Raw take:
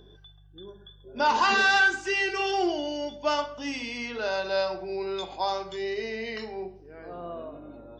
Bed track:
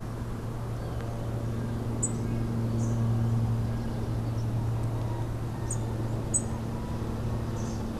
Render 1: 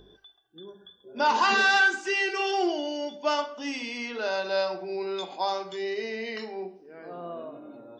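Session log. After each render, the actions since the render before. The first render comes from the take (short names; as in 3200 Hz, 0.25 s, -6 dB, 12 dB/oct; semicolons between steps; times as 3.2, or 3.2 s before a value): de-hum 50 Hz, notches 3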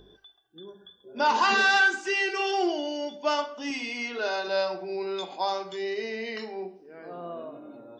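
3.7–4.48 comb 2.8 ms, depth 56%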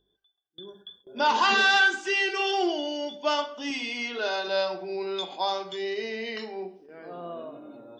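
gate with hold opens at -42 dBFS; bell 3300 Hz +7.5 dB 0.3 oct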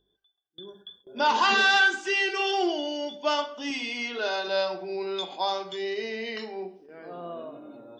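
nothing audible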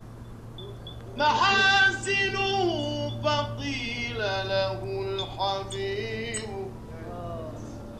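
add bed track -8 dB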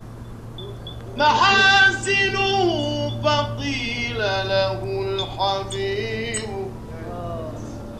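gain +6 dB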